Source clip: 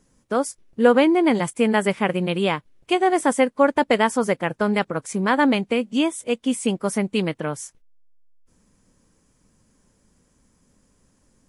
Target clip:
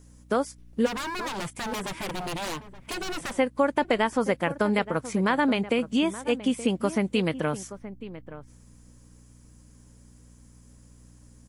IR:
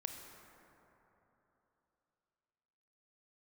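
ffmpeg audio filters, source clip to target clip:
-filter_complex "[0:a]acrossover=split=4600[link_01][link_02];[link_02]acompressor=threshold=-49dB:ratio=4:attack=1:release=60[link_03];[link_01][link_03]amix=inputs=2:normalize=0,highshelf=frequency=5200:gain=7,acompressor=threshold=-23dB:ratio=2.5,asplit=3[link_04][link_05][link_06];[link_04]afade=type=out:start_time=0.85:duration=0.02[link_07];[link_05]aeval=exprs='0.0398*(abs(mod(val(0)/0.0398+3,4)-2)-1)':channel_layout=same,afade=type=in:start_time=0.85:duration=0.02,afade=type=out:start_time=3.36:duration=0.02[link_08];[link_06]afade=type=in:start_time=3.36:duration=0.02[link_09];[link_07][link_08][link_09]amix=inputs=3:normalize=0,aeval=exprs='val(0)+0.00251*(sin(2*PI*60*n/s)+sin(2*PI*2*60*n/s)/2+sin(2*PI*3*60*n/s)/3+sin(2*PI*4*60*n/s)/4+sin(2*PI*5*60*n/s)/5)':channel_layout=same,asplit=2[link_10][link_11];[link_11]adelay=874.6,volume=-14dB,highshelf=frequency=4000:gain=-19.7[link_12];[link_10][link_12]amix=inputs=2:normalize=0,volume=1dB"

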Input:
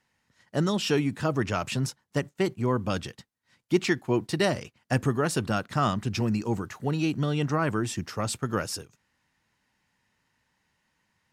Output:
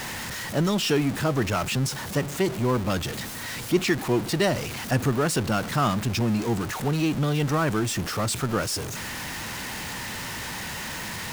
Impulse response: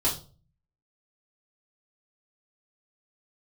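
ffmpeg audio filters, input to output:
-af "aeval=exprs='val(0)+0.5*0.0422*sgn(val(0))':channel_layout=same"

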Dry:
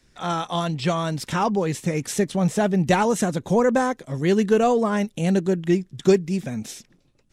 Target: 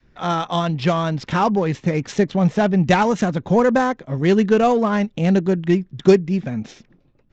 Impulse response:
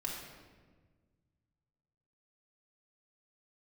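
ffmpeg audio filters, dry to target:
-af "adynamicsmooth=sensitivity=3:basefreq=2400,aresample=16000,aresample=44100,adynamicequalizer=threshold=0.0224:dfrequency=420:dqfactor=1.2:tfrequency=420:tqfactor=1.2:attack=5:release=100:ratio=0.375:range=2:mode=cutabove:tftype=bell,volume=4.5dB"

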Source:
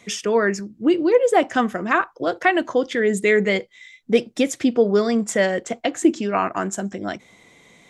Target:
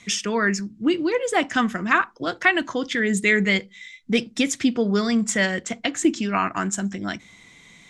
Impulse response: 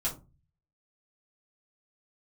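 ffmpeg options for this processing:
-filter_complex "[0:a]lowpass=9000,equalizer=frequency=520:width=0.77:gain=-12.5,asplit=2[link_01][link_02];[1:a]atrim=start_sample=2205,asetrate=70560,aresample=44100[link_03];[link_02][link_03]afir=irnorm=-1:irlink=0,volume=-19.5dB[link_04];[link_01][link_04]amix=inputs=2:normalize=0,volume=4dB"

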